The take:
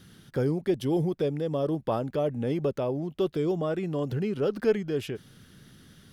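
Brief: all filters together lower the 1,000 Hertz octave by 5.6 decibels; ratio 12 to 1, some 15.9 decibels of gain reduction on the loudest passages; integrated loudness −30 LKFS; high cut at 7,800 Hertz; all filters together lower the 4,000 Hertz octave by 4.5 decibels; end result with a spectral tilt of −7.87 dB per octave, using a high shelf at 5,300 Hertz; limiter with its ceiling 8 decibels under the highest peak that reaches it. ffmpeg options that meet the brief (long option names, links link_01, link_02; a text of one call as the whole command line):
ffmpeg -i in.wav -af "lowpass=7800,equalizer=frequency=1000:width_type=o:gain=-8,equalizer=frequency=4000:width_type=o:gain=-8,highshelf=frequency=5300:gain=6.5,acompressor=threshold=-36dB:ratio=12,volume=12.5dB,alimiter=limit=-21.5dB:level=0:latency=1" out.wav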